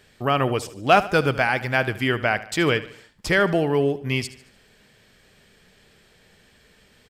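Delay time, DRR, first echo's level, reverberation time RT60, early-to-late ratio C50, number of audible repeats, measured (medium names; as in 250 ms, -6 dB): 74 ms, no reverb, -16.0 dB, no reverb, no reverb, 3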